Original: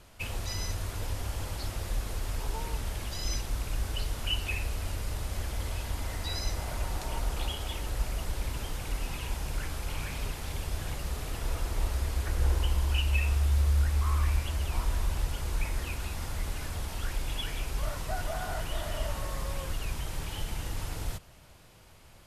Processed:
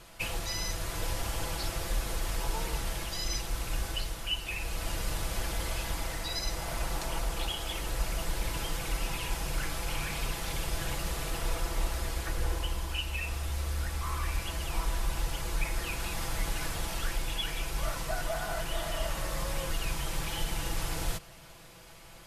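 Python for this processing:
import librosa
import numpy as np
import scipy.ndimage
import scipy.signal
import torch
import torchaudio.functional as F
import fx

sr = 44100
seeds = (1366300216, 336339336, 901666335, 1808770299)

y = fx.low_shelf(x, sr, hz=340.0, db=-4.5)
y = y + 0.53 * np.pad(y, (int(6.0 * sr / 1000.0), 0))[:len(y)]
y = fx.rider(y, sr, range_db=10, speed_s=0.5)
y = y * librosa.db_to_amplitude(2.0)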